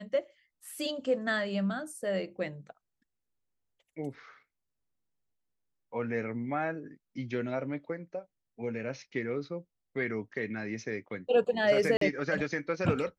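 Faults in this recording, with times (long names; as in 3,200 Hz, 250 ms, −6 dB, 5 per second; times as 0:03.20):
0:11.97–0:12.01: drop-out 43 ms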